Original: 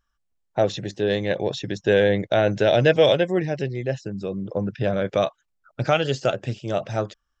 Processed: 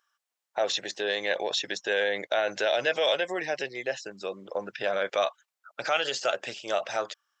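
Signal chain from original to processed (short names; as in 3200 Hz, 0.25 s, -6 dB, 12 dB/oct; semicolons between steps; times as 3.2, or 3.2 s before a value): limiter -15.5 dBFS, peak gain reduction 9.5 dB; HPF 780 Hz 12 dB/oct; gain +5 dB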